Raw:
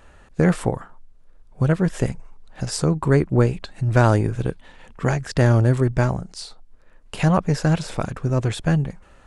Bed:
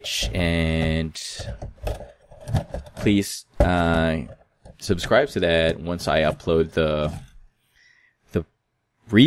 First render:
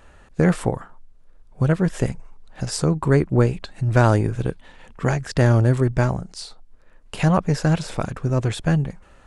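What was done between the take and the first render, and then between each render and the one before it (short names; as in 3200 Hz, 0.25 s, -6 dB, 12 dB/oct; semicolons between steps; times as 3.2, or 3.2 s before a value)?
nothing audible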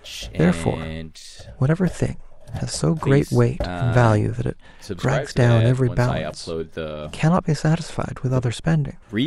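add bed -8 dB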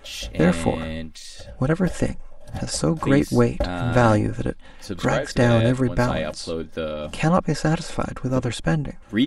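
comb 3.7 ms, depth 47%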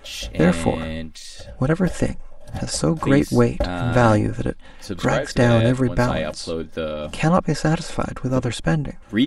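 gain +1.5 dB; limiter -2 dBFS, peak gain reduction 1 dB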